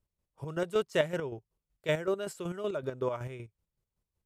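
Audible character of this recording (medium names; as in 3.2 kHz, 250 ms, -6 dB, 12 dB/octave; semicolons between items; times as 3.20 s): chopped level 5.3 Hz, depth 60%, duty 35%; AC-3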